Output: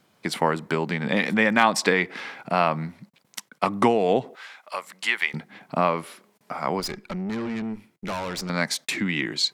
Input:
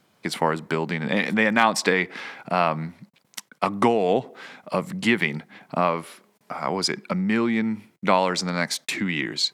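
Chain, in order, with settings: 4.35–5.34 s: high-pass 970 Hz 12 dB/octave; 6.80–8.50 s: valve stage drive 26 dB, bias 0.7

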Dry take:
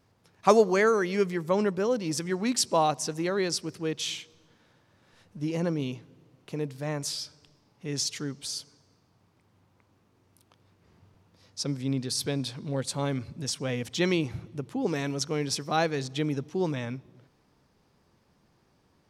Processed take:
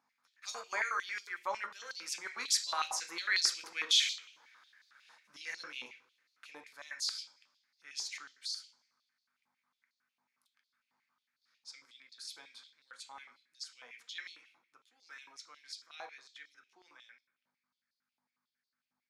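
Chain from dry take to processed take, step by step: Doppler pass-by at 4.12 s, 9 m/s, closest 10 m; hum 50 Hz, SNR 18 dB; reverberation RT60 0.50 s, pre-delay 3 ms, DRR 4 dB; step-sequenced high-pass 11 Hz 910–4200 Hz; trim -2.5 dB

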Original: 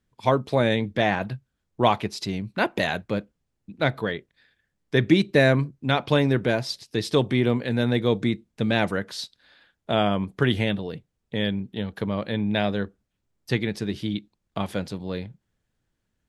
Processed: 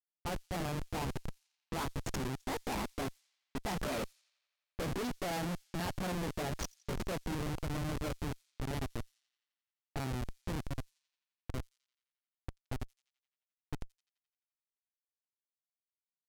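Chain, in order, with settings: rotating-head pitch shifter +4.5 st; Doppler pass-by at 4.12 s, 13 m/s, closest 3.1 m; dynamic bell 2.5 kHz, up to -6 dB, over -55 dBFS, Q 1.2; in parallel at 0 dB: compression 5:1, threshold -48 dBFS, peak gain reduction 21 dB; on the sum: Schmitt trigger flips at -42.5 dBFS; on a send: feedback echo behind a high-pass 86 ms, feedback 77%, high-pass 4.6 kHz, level -21.5 dB; on the sum: level-controlled noise filter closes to 2.5 kHz, open at -44 dBFS; trim +6 dB

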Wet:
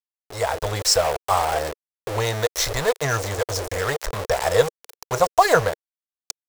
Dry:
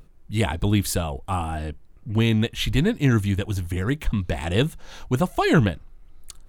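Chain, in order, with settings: FFT filter 110 Hz 0 dB, 160 Hz -5 dB, 340 Hz -24 dB, 600 Hz -7 dB, 1.1 kHz -11 dB, 1.9 kHz -13 dB, 3 kHz -25 dB, 4.7 kHz +4 dB, 7.5 kHz +3 dB, 11 kHz -21 dB; in parallel at -3 dB: compression, threshold -28 dBFS, peak gain reduction 10.5 dB; on the sum: reverberation, pre-delay 3 ms, DRR 14.5 dB; small samples zeroed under -30 dBFS; level rider gain up to 9 dB; resonant low shelf 320 Hz -12.5 dB, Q 3

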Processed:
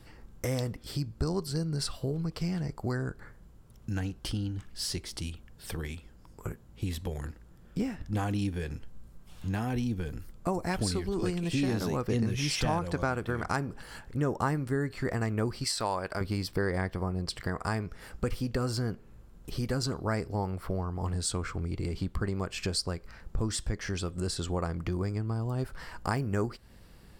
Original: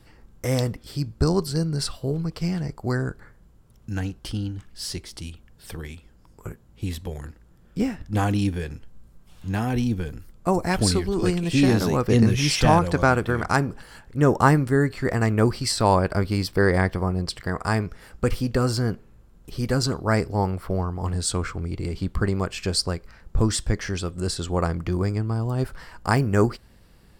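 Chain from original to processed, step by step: 15.64–16.21 s: bass shelf 400 Hz -12 dB; compression 2.5:1, threshold -31 dBFS, peak gain reduction 13.5 dB

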